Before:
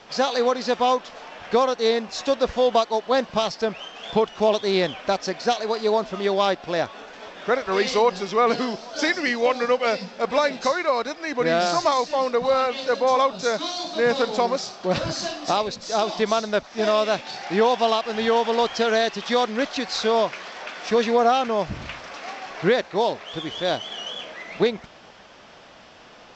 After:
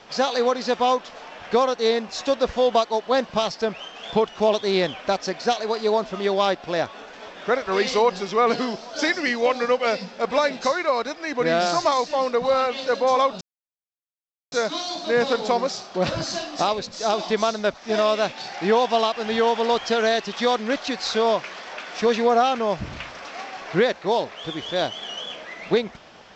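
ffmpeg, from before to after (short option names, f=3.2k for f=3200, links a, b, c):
-filter_complex "[0:a]asplit=2[a][b];[a]atrim=end=13.41,asetpts=PTS-STARTPTS,afade=t=out:st=13.406:d=0.004:c=hsin,apad=pad_dur=1.11[c];[b]atrim=start=13.41,asetpts=PTS-STARTPTS,afade=t=in:d=0.004:c=hsin[d];[c][d]concat=n=2:v=0:a=1"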